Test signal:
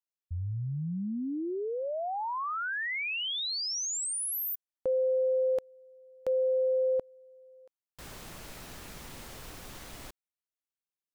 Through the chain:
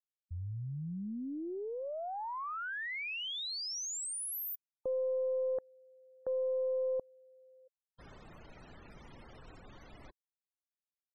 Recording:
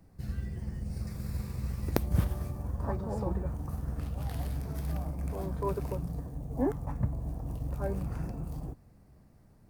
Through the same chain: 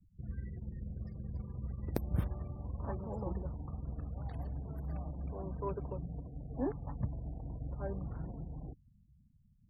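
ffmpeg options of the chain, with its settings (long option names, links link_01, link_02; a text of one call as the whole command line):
ffmpeg -i in.wav -af "afftfilt=real='re*gte(hypot(re,im),0.00562)':imag='im*gte(hypot(re,im),0.00562)':win_size=1024:overlap=0.75,aeval=exprs='0.596*(cos(1*acos(clip(val(0)/0.596,-1,1)))-cos(1*PI/2))+0.15*(cos(2*acos(clip(val(0)/0.596,-1,1)))-cos(2*PI/2))':channel_layout=same,volume=-6dB" out.wav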